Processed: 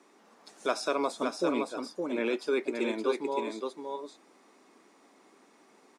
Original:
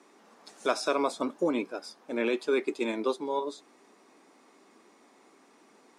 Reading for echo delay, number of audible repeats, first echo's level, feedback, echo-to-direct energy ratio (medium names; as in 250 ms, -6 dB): 566 ms, 1, -5.0 dB, no regular repeats, -5.0 dB